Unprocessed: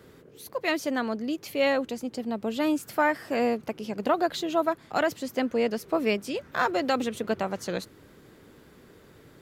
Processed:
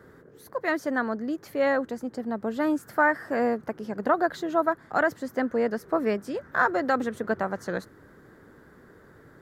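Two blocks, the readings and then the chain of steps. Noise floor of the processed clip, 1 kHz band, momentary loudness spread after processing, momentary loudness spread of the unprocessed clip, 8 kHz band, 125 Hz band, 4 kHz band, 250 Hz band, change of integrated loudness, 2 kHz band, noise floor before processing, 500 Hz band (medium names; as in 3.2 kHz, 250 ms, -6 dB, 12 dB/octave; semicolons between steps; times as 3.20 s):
-54 dBFS, +2.0 dB, 9 LU, 8 LU, no reading, 0.0 dB, -10.0 dB, 0.0 dB, +1.0 dB, +3.5 dB, -54 dBFS, +0.5 dB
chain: resonant high shelf 2.1 kHz -7 dB, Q 3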